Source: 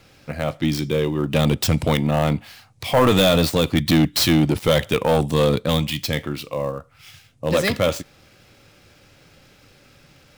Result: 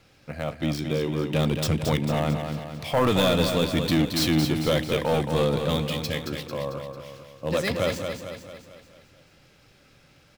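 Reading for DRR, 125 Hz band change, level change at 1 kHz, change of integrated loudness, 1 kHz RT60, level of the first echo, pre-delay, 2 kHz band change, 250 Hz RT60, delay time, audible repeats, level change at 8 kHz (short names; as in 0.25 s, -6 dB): none, -5.0 dB, -5.0 dB, -5.5 dB, none, -6.5 dB, none, -5.0 dB, none, 0.223 s, 6, -6.0 dB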